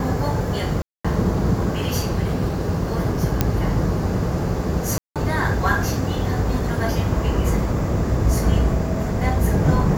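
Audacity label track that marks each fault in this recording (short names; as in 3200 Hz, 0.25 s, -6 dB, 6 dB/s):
0.820000	1.040000	gap 0.225 s
3.410000	3.410000	pop -3 dBFS
4.980000	5.160000	gap 0.177 s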